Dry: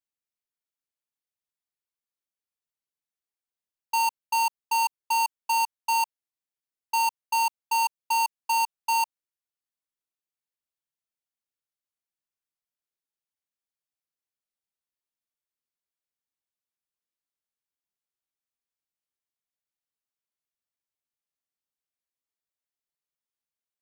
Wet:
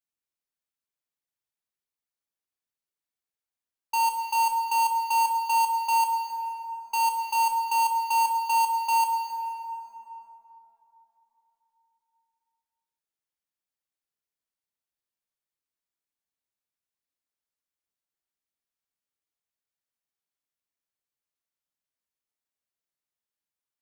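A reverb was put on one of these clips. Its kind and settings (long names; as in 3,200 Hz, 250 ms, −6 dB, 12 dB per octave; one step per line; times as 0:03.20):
dense smooth reverb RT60 3.8 s, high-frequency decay 0.45×, DRR 2.5 dB
level −2 dB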